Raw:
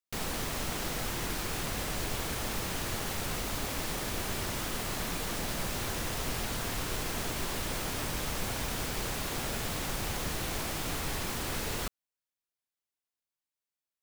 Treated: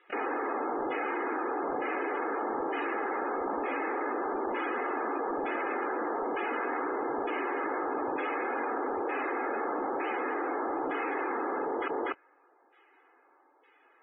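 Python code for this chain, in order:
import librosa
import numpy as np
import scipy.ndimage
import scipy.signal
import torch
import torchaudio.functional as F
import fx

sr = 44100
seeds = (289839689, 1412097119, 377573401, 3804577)

p1 = scipy.signal.sosfilt(scipy.signal.ellip(3, 1.0, 40, [280.0, 5300.0], 'bandpass', fs=sr, output='sos'), x)
p2 = p1 + 0.43 * np.pad(p1, (int(2.4 * sr / 1000.0), 0))[:len(p1)]
p3 = fx.quant_companded(p2, sr, bits=2)
p4 = p2 + F.gain(torch.from_numpy(p3), -5.5).numpy()
p5 = 10.0 ** (-24.5 / 20.0) * np.tanh(p4 / 10.0 ** (-24.5 / 20.0))
p6 = fx.filter_lfo_lowpass(p5, sr, shape='saw_down', hz=1.1, low_hz=850.0, high_hz=2500.0, q=1.1)
p7 = fx.spec_topn(p6, sr, count=64)
p8 = fx.air_absorb(p7, sr, metres=270.0)
p9 = p8 + 10.0 ** (-19.0 / 20.0) * np.pad(p8, (int(243 * sr / 1000.0), 0))[:len(p8)]
y = fx.env_flatten(p9, sr, amount_pct=100)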